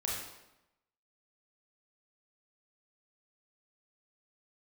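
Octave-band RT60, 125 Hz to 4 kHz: 0.90, 1.0, 0.95, 0.90, 0.85, 0.75 s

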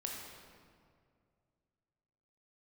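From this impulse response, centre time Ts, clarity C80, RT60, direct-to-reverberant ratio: 87 ms, 2.5 dB, 2.2 s, -1.0 dB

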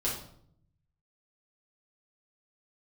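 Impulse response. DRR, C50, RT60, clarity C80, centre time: -7.0 dB, 4.5 dB, 0.65 s, 8.5 dB, 35 ms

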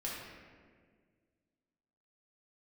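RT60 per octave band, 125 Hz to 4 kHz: 2.3, 2.3, 2.0, 1.5, 1.5, 1.0 s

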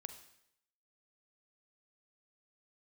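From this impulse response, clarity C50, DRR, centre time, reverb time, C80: 10.0 dB, 8.5 dB, 12 ms, 0.75 s, 12.5 dB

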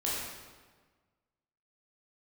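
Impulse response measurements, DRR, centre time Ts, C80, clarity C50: -7.0 dB, 95 ms, 1.0 dB, -1.5 dB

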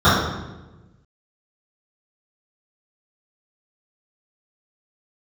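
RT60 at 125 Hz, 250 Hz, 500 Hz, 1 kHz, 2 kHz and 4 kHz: 1.6, 1.5, 1.2, 0.95, 0.90, 0.80 s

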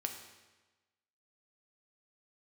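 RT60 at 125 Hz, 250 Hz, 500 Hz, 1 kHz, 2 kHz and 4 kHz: 1.3, 1.2, 1.2, 1.2, 1.2, 1.1 s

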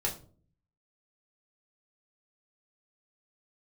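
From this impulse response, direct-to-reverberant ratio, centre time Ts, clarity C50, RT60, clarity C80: -2.5 dB, 18 ms, 11.5 dB, 0.45 s, 16.5 dB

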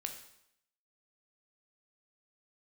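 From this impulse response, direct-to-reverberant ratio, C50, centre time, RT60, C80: 4.0 dB, 8.0 dB, 19 ms, 0.75 s, 11.0 dB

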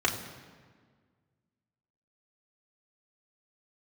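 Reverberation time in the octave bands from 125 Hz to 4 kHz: 2.2, 2.0, 1.7, 1.6, 1.5, 1.2 s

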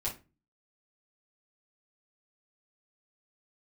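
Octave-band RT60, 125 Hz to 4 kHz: 0.50, 0.45, 0.30, 0.25, 0.25, 0.20 s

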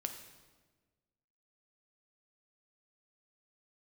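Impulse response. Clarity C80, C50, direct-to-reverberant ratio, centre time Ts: 9.5 dB, 8.0 dB, 5.5 dB, 21 ms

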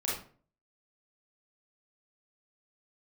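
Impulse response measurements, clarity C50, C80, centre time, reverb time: 1.5 dB, 8.0 dB, 48 ms, 0.45 s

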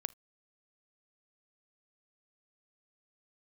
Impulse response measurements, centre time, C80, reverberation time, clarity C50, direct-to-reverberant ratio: 1 ms, 35.0 dB, not exponential, 23.5 dB, 19.0 dB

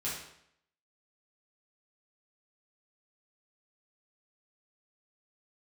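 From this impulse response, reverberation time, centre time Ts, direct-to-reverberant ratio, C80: 0.70 s, 51 ms, -8.5 dB, 6.0 dB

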